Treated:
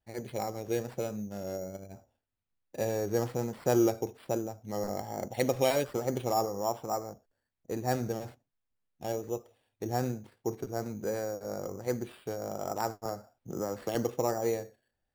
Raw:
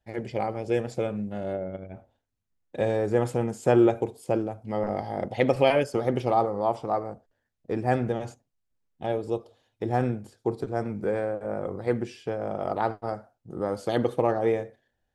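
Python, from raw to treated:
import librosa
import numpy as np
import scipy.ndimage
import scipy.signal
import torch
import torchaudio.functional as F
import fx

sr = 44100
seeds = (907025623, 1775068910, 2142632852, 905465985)

y = fx.sample_hold(x, sr, seeds[0], rate_hz=6300.0, jitter_pct=0)
y = fx.vibrato(y, sr, rate_hz=1.2, depth_cents=42.0)
y = fx.band_squash(y, sr, depth_pct=70, at=(13.05, 13.95))
y = F.gain(torch.from_numpy(y), -6.0).numpy()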